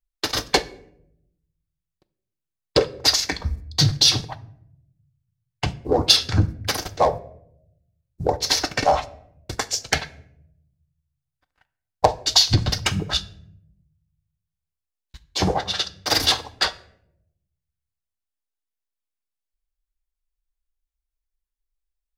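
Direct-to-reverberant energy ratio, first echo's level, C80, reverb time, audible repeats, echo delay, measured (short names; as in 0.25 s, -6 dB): 10.5 dB, none, 21.5 dB, 0.75 s, none, none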